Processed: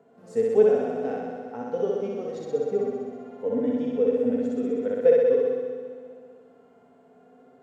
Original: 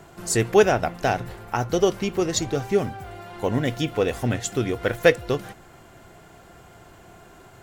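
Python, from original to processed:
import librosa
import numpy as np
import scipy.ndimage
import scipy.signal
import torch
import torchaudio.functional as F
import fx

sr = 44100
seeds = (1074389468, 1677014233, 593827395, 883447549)

p1 = fx.double_bandpass(x, sr, hz=340.0, octaves=0.83)
p2 = fx.tilt_eq(p1, sr, slope=2.5)
p3 = p2 + fx.room_flutter(p2, sr, wall_m=10.8, rt60_s=1.4, dry=0)
p4 = fx.hpss(p3, sr, part='harmonic', gain_db=9)
p5 = fx.echo_feedback(p4, sr, ms=197, feedback_pct=54, wet_db=-11)
y = p5 * librosa.db_to_amplitude(-3.5)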